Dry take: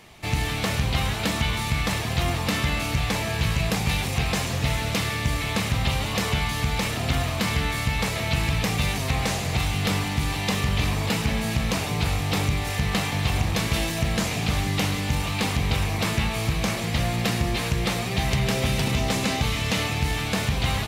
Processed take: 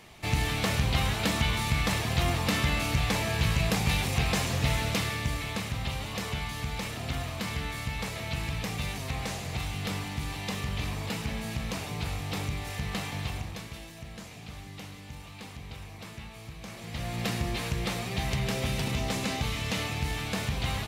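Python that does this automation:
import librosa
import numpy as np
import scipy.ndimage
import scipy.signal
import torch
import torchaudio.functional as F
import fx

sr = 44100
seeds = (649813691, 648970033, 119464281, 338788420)

y = fx.gain(x, sr, db=fx.line((4.8, -2.5), (5.7, -9.0), (13.21, -9.0), (13.79, -19.0), (16.59, -19.0), (17.24, -6.5)))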